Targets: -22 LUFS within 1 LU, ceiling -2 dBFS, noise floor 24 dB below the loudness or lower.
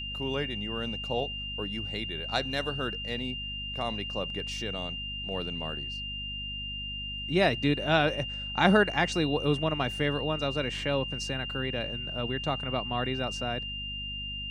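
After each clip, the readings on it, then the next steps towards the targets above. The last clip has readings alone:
hum 50 Hz; harmonics up to 250 Hz; hum level -40 dBFS; steady tone 2800 Hz; tone level -35 dBFS; loudness -30.0 LUFS; peak -7.0 dBFS; loudness target -22.0 LUFS
-> de-hum 50 Hz, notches 5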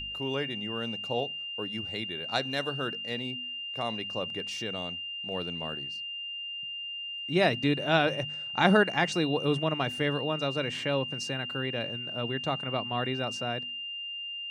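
hum none; steady tone 2800 Hz; tone level -35 dBFS
-> notch 2800 Hz, Q 30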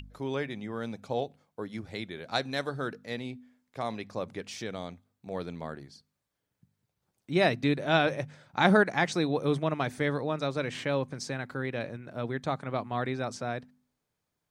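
steady tone none; loudness -31.0 LUFS; peak -7.0 dBFS; loudness target -22.0 LUFS
-> gain +9 dB; limiter -2 dBFS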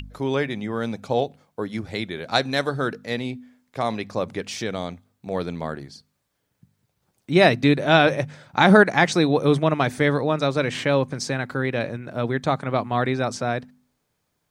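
loudness -22.5 LUFS; peak -2.0 dBFS; noise floor -75 dBFS

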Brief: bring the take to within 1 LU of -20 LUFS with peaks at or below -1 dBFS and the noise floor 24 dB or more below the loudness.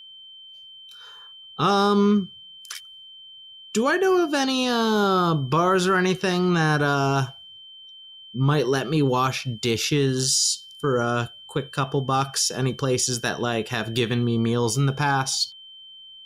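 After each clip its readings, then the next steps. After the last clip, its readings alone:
steady tone 3100 Hz; tone level -42 dBFS; loudness -22.5 LUFS; peak -10.5 dBFS; loudness target -20.0 LUFS
-> notch 3100 Hz, Q 30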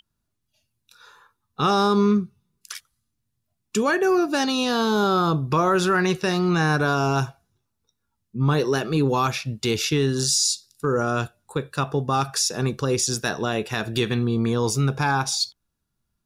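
steady tone none; loudness -22.5 LUFS; peak -10.0 dBFS; loudness target -20.0 LUFS
-> gain +2.5 dB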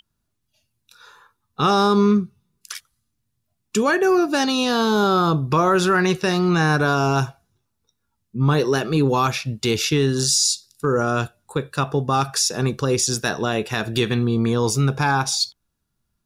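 loudness -20.0 LUFS; peak -7.5 dBFS; noise floor -75 dBFS

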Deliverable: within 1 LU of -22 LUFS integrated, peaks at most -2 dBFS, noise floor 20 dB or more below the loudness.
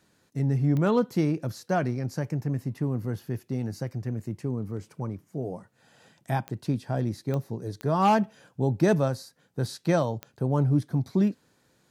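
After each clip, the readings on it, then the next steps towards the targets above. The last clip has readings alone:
clicks 5; loudness -28.0 LUFS; peak -10.0 dBFS; loudness target -22.0 LUFS
-> de-click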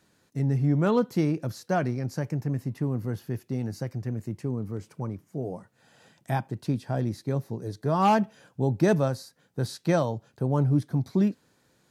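clicks 0; loudness -28.0 LUFS; peak -10.0 dBFS; loudness target -22.0 LUFS
-> gain +6 dB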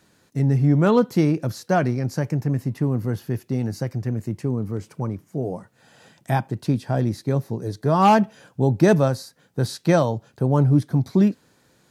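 loudness -22.0 LUFS; peak -4.0 dBFS; noise floor -61 dBFS

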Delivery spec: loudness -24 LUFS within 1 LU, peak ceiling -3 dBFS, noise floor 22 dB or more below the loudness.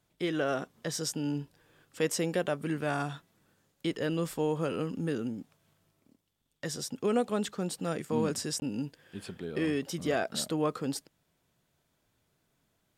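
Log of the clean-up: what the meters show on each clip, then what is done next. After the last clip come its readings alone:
dropouts 1; longest dropout 20 ms; loudness -33.0 LUFS; peak -15.5 dBFS; loudness target -24.0 LUFS
-> interpolate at 8.6, 20 ms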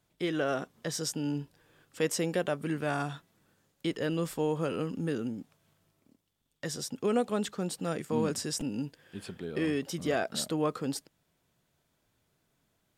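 dropouts 0; loudness -33.0 LUFS; peak -15.5 dBFS; loudness target -24.0 LUFS
-> gain +9 dB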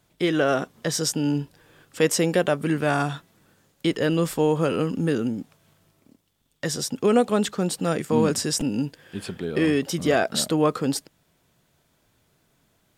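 loudness -24.0 LUFS; peak -6.5 dBFS; noise floor -67 dBFS

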